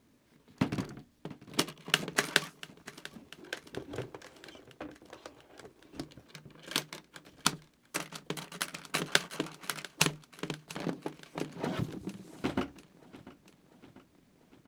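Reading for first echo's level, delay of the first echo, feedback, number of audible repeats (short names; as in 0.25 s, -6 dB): -19.0 dB, 0.693 s, 60%, 4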